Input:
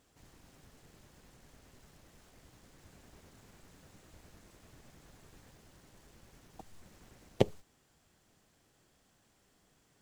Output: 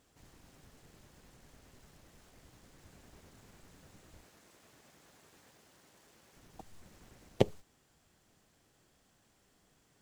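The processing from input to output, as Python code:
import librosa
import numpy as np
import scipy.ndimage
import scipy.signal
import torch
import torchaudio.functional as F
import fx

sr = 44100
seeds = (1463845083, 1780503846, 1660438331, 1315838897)

y = fx.highpass(x, sr, hz=360.0, slope=6, at=(4.24, 6.37))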